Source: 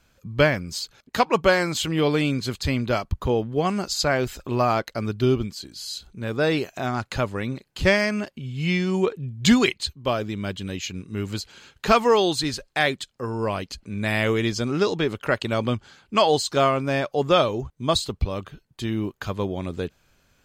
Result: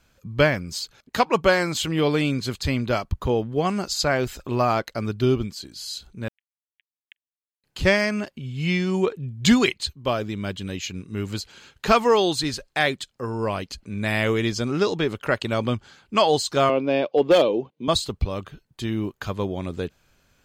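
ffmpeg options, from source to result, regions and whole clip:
-filter_complex "[0:a]asettb=1/sr,asplit=3[a][b][c];[a]atrim=end=6.284[d];[b]atrim=start=6.28:end=7.64,asetpts=PTS-STARTPTS,afade=t=in:d=0.004:c=qsin,afade=t=out:st=1.356:d=0.004:c=qsin,acompressor=threshold=-26dB:ratio=20:attack=3.2:release=140:knee=1:detection=peak,acrusher=bits=2:mix=0:aa=0.5,asuperpass=centerf=2400:order=12:qfactor=1.5[e];[c]atrim=start=7.636[f];[d][e]acrossfade=d=0.004:c1=hsin:c2=qsin[g];[g][f]acrossfade=d=0.004:c1=qsin:c2=hsin,asettb=1/sr,asplit=3[h][i][j];[h]atrim=end=16.694[k];[i]atrim=start=16.69:end=17.88,asetpts=PTS-STARTPTS,afade=t=in:d=0.004:c=qsin,afade=t=out:st=1.186:d=0.004:c=qsin,highpass=f=170:w=0.5412,highpass=f=170:w=1.3066,equalizer=f=320:t=q:w=4:g=6,equalizer=f=490:t=q:w=4:g=8,equalizer=f=1.3k:t=q:w=4:g=-9,equalizer=f=1.8k:t=q:w=4:g=-7,equalizer=f=2.8k:t=q:w=4:g=4,lowpass=f=4.2k:w=0.5412,lowpass=f=4.2k:w=1.3066,volume=10dB,asoftclip=hard,volume=-10dB[l];[j]atrim=start=17.876[m];[k][l]acrossfade=d=0.004:c1=hsin:c2=qsin[n];[n][m]acrossfade=d=0.004:c1=qsin:c2=hsin"

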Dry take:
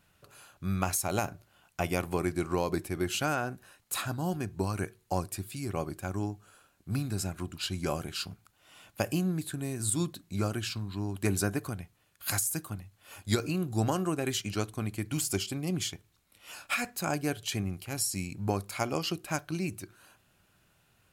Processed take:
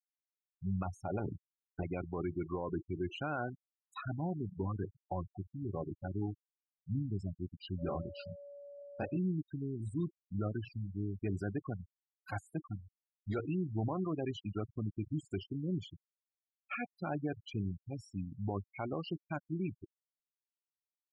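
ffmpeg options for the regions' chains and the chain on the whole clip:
-filter_complex "[0:a]asettb=1/sr,asplit=3[a][b][c];[a]atrim=end=1.194[d];[b]atrim=start=1.19:end=1.83,asetpts=PTS-STARTPTS,afade=t=in:d=0.004:c=qsin,afade=t=out:st=0.636:d=0.004:c=qsin,lowpass=2k,lowshelf=f=530:t=q:w=3:g=7[e];[c]atrim=start=1.826[f];[d][e]acrossfade=d=0.004:c1=hsin:c2=qsin[g];[g][f]acrossfade=d=0.004:c1=qsin:c2=hsin,asettb=1/sr,asplit=3[h][i][j];[h]atrim=end=4.254[k];[i]atrim=start=4.25:end=7.02,asetpts=PTS-STARTPTS,afade=t=in:d=0.004:c=qsin,afade=t=out:st=2.766:d=0.004:c=qsin,equalizer=f=8.1k:w=0.42:g=-12,asoftclip=type=hard:threshold=-22.5dB,aecho=1:1:231:0.178,atrim=end_sample=122157[l];[j]atrim=start=7.016[m];[k][l]acrossfade=d=0.004:c1=hsin:c2=qsin[n];[n][m]acrossfade=d=0.004:c1=qsin:c2=hsin,asettb=1/sr,asplit=3[o][p][q];[o]atrim=end=7.784[r];[p]atrim=start=7.78:end=9.17,asetpts=PTS-STARTPTS,afade=t=in:d=0.004:c=qsin,afade=t=out:st=1.386:d=0.004:c=qsin,aeval=exprs='val(0)+0.00562*sin(2*PI*570*n/s)':c=same,aeval=exprs='val(0)*gte(abs(val(0)),0.00299)':c=same,asplit=2[s][t];[t]adelay=23,volume=-3.5dB[u];[s][u]amix=inputs=2:normalize=0,atrim=end_sample=61299[v];[q]atrim=start=9.166[w];[r][v]acrossfade=d=0.004:c1=hsin:c2=qsin[x];[x][w]acrossfade=d=0.004:c1=qsin:c2=hsin,asettb=1/sr,asplit=3[y][z][aa];[y]atrim=end=11.604[ab];[z]atrim=start=11.6:end=13.39,asetpts=PTS-STARTPTS,afade=t=in:d=0.004:c=qsin,afade=t=out:st=1.786:d=0.004:c=qsin,highpass=42,equalizer=f=680:t=o:w=1.8:g=5.5[ac];[aa]atrim=start=13.386[ad];[ab][ac]acrossfade=d=0.004:c1=hsin:c2=qsin[ae];[ae][ad]acrossfade=d=0.004:c1=qsin:c2=hsin,afftfilt=real='re*gte(hypot(re,im),0.0501)':imag='im*gte(hypot(re,im),0.0501)':win_size=1024:overlap=0.75,alimiter=limit=-24dB:level=0:latency=1:release=15,lowpass=2.2k,volume=-3.5dB"

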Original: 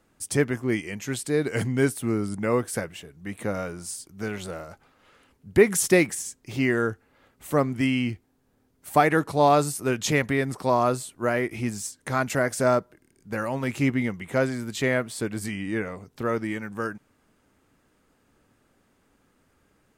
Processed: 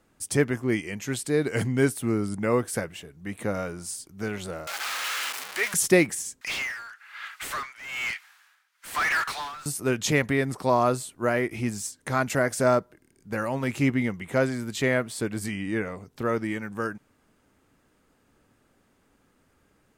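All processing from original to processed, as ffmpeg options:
-filter_complex "[0:a]asettb=1/sr,asplit=3[a][b][c];[a]atrim=end=4.674[d];[b]atrim=start=4.67:end=5.74,asetpts=PTS-STARTPTS,afade=t=in:d=0.004:c=qsin,afade=t=out:st=1.066:d=0.004:c=qsin,aeval=exprs='val(0)+0.5*0.0891*sgn(val(0))':c=same,highpass=1.3k,highshelf=f=8.6k:g=-4.5[e];[c]atrim=start=5.736[f];[d][e]acrossfade=d=0.004:c1=hsin:c2=qsin[g];[g][f]acrossfade=d=0.004:c1=qsin:c2=hsin,asettb=1/sr,asplit=3[h][i][j];[h]atrim=end=6.414[k];[i]atrim=start=6.41:end=9.66,asetpts=PTS-STARTPTS,afade=t=in:d=0.004:c=qsin,afade=t=out:st=3.246:d=0.004:c=qsin,highpass=f=1.4k:w=0.5412,highpass=f=1.4k:w=1.3066,asplit=2[l][m];[m]highpass=f=720:p=1,volume=37dB,asoftclip=type=tanh:threshold=-15.5dB[n];[l][n]amix=inputs=2:normalize=0,lowpass=f=1.9k:p=1,volume=-6dB,tremolo=f=1.1:d=0.87[o];[j]atrim=start=9.656[p];[k][o]acrossfade=d=0.004:c1=hsin:c2=qsin[q];[q][p]acrossfade=d=0.004:c1=qsin:c2=hsin"

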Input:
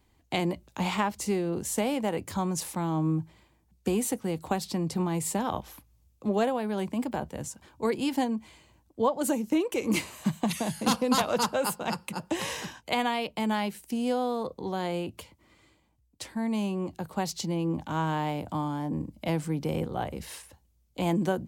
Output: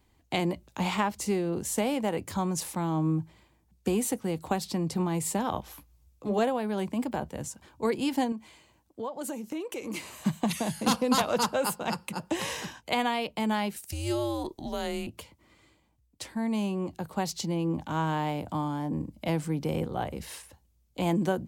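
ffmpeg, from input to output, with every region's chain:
-filter_complex "[0:a]asettb=1/sr,asplit=3[a][b][c];[a]atrim=end=5.694[d];[b]atrim=start=5.69:end=6.39,asetpts=PTS-STARTPTS,afade=t=in:d=0.004:c=qsin,afade=t=out:st=0.696:d=0.004:c=qsin,bandreject=f=220:w=6.2,asplit=2[e][f];[f]adelay=14,volume=-5dB[g];[e][g]amix=inputs=2:normalize=0,atrim=end_sample=30870[h];[c]atrim=start=6.386[i];[d][h]acrossfade=d=0.004:c1=hsin:c2=qsin[j];[j][i]acrossfade=d=0.004:c1=qsin:c2=hsin,asettb=1/sr,asplit=3[k][l][m];[k]atrim=end=8.324[n];[l]atrim=start=8.32:end=10.1,asetpts=PTS-STARTPTS,afade=t=in:d=0.004:c=qsin,afade=t=out:st=1.776:d=0.004:c=qsin,lowshelf=f=150:g=-8.5,acompressor=threshold=-35dB:ratio=2.5:attack=3.2:release=140:knee=1:detection=peak[o];[m]atrim=start=10.096[p];[n][o]acrossfade=d=0.004:c1=hsin:c2=qsin[q];[q][p]acrossfade=d=0.004:c1=qsin:c2=hsin,asettb=1/sr,asplit=3[r][s][t];[r]atrim=end=13.764[u];[s]atrim=start=13.76:end=15.07,asetpts=PTS-STARTPTS,afade=t=in:d=0.004:c=qsin,afade=t=out:st=1.306:d=0.004:c=qsin,bass=f=250:g=-10,treble=f=4k:g=7,afreqshift=-150[v];[t]atrim=start=15.066[w];[u][v]acrossfade=d=0.004:c1=hsin:c2=qsin[x];[x][w]acrossfade=d=0.004:c1=qsin:c2=hsin"

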